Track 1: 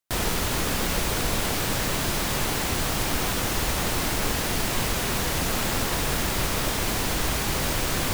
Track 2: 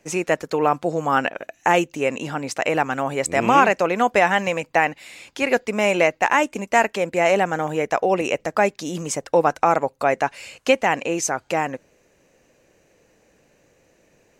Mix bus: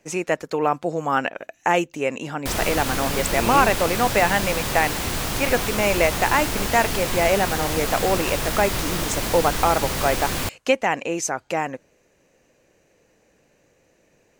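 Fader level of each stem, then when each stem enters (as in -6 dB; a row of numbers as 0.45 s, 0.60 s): 0.0 dB, -2.0 dB; 2.35 s, 0.00 s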